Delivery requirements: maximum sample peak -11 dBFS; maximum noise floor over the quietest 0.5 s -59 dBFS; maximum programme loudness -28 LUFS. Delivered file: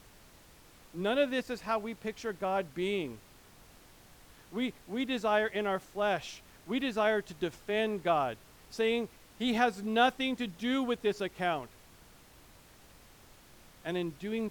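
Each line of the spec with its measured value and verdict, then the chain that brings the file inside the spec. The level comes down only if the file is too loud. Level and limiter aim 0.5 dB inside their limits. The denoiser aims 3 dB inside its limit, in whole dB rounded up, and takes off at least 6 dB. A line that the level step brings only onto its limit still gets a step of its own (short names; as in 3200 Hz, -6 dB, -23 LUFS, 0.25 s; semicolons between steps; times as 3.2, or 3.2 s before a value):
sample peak -14.5 dBFS: OK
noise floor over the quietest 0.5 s -57 dBFS: fail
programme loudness -32.5 LUFS: OK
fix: denoiser 6 dB, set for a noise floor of -57 dBFS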